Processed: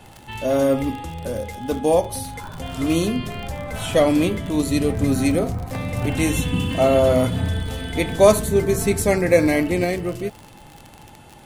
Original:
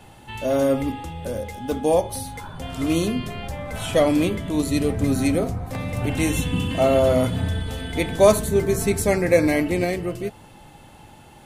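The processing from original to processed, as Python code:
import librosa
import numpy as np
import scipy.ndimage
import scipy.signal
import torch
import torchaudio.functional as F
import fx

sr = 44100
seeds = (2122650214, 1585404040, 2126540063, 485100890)

y = fx.dmg_crackle(x, sr, seeds[0], per_s=55.0, level_db=-29.0)
y = y * 10.0 ** (1.5 / 20.0)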